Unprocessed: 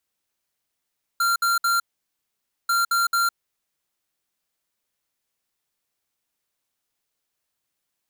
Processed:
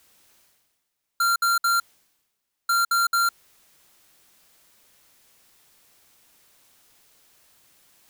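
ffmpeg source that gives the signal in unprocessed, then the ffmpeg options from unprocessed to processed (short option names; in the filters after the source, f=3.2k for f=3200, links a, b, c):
-f lavfi -i "aevalsrc='0.0944*(2*lt(mod(1380*t,1),0.5)-1)*clip(min(mod(mod(t,1.49),0.22),0.16-mod(mod(t,1.49),0.22))/0.005,0,1)*lt(mod(t,1.49),0.66)':d=2.98:s=44100"
-af "areverse,acompressor=mode=upward:threshold=-41dB:ratio=2.5,areverse"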